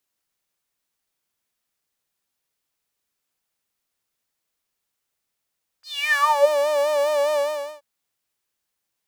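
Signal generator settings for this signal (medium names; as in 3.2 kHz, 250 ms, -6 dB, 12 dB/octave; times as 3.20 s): synth patch with vibrato D5, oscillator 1 saw, oscillator 2 sine, interval +7 st, oscillator 2 level -10 dB, sub -24 dB, filter highpass, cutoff 430 Hz, Q 11, filter envelope 3.5 oct, filter decay 0.65 s, filter sustain 5%, attack 316 ms, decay 0.20 s, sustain -4 dB, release 0.45 s, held 1.53 s, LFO 4.9 Hz, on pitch 67 cents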